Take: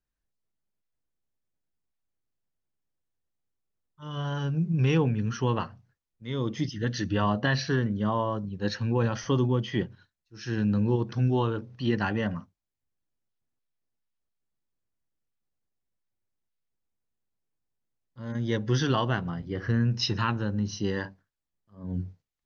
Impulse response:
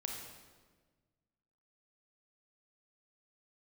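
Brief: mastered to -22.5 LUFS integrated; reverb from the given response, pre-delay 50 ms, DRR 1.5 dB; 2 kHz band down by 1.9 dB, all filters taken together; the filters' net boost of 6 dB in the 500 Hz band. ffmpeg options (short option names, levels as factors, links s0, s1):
-filter_complex "[0:a]equalizer=f=500:t=o:g=7.5,equalizer=f=2000:t=o:g=-3,asplit=2[s0][s1];[1:a]atrim=start_sample=2205,adelay=50[s2];[s1][s2]afir=irnorm=-1:irlink=0,volume=0.841[s3];[s0][s3]amix=inputs=2:normalize=0,volume=1.19"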